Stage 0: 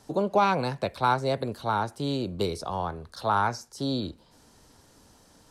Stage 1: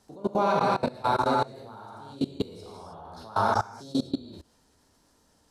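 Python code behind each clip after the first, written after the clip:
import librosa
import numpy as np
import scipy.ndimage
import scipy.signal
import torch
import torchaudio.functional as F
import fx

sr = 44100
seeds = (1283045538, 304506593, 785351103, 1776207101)

y = fx.dynamic_eq(x, sr, hz=2500.0, q=1.2, threshold_db=-42.0, ratio=4.0, max_db=-6)
y = fx.rev_gated(y, sr, seeds[0], gate_ms=340, shape='flat', drr_db=-5.5)
y = fx.level_steps(y, sr, step_db=21)
y = y * 10.0 ** (-2.0 / 20.0)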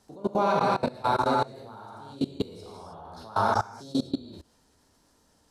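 y = x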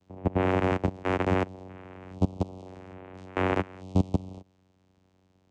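y = fx.vocoder(x, sr, bands=4, carrier='saw', carrier_hz=93.2)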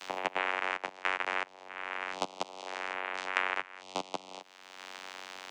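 y = scipy.signal.sosfilt(scipy.signal.butter(2, 1500.0, 'highpass', fs=sr, output='sos'), x)
y = fx.high_shelf(y, sr, hz=6200.0, db=-10.5)
y = fx.band_squash(y, sr, depth_pct=100)
y = y * 10.0 ** (6.5 / 20.0)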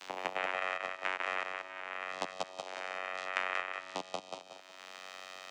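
y = fx.echo_feedback(x, sr, ms=184, feedback_pct=34, wet_db=-4)
y = y * 10.0 ** (-4.0 / 20.0)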